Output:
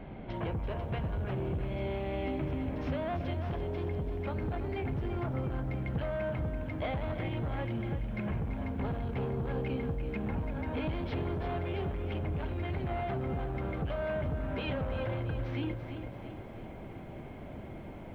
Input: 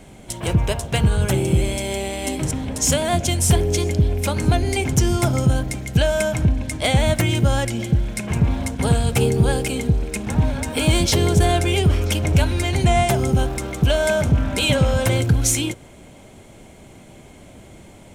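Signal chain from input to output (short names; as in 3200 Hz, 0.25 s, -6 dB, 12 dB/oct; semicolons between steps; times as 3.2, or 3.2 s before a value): soft clip -19.5 dBFS, distortion -9 dB; Gaussian blur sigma 3.5 samples; notches 60/120/180/240/300/360/420/480/540/600 Hz; compressor 10:1, threshold -32 dBFS, peak gain reduction 12 dB; lo-fi delay 0.337 s, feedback 55%, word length 11-bit, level -9 dB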